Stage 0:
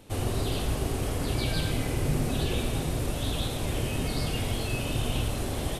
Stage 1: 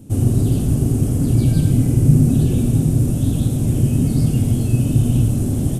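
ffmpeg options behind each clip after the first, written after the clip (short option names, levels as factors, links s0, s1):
-af "equalizer=f=125:t=o:w=1:g=12,equalizer=f=250:t=o:w=1:g=10,equalizer=f=500:t=o:w=1:g=-4,equalizer=f=1000:t=o:w=1:g=-9,equalizer=f=2000:t=o:w=1:g=-10,equalizer=f=4000:t=o:w=1:g=-11,equalizer=f=8000:t=o:w=1:g=4,volume=1.78"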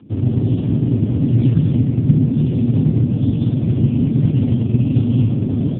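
-af "dynaudnorm=f=220:g=3:m=2.24" -ar 8000 -c:a libopencore_amrnb -b:a 5150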